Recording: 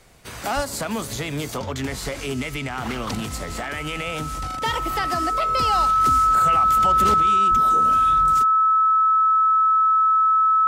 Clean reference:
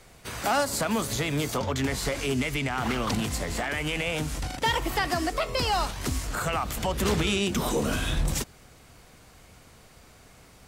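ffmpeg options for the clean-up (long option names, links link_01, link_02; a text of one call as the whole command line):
ffmpeg -i in.wav -filter_complex "[0:a]bandreject=frequency=1300:width=30,asplit=3[link_01][link_02][link_03];[link_01]afade=type=out:start_time=0.55:duration=0.02[link_04];[link_02]highpass=frequency=140:width=0.5412,highpass=frequency=140:width=1.3066,afade=type=in:start_time=0.55:duration=0.02,afade=type=out:start_time=0.67:duration=0.02[link_05];[link_03]afade=type=in:start_time=0.67:duration=0.02[link_06];[link_04][link_05][link_06]amix=inputs=3:normalize=0,asplit=3[link_07][link_08][link_09];[link_07]afade=type=out:start_time=7.5:duration=0.02[link_10];[link_08]highpass=frequency=140:width=0.5412,highpass=frequency=140:width=1.3066,afade=type=in:start_time=7.5:duration=0.02,afade=type=out:start_time=7.62:duration=0.02[link_11];[link_09]afade=type=in:start_time=7.62:duration=0.02[link_12];[link_10][link_11][link_12]amix=inputs=3:normalize=0,asetnsamples=nb_out_samples=441:pad=0,asendcmd='7.14 volume volume 7dB',volume=0dB" out.wav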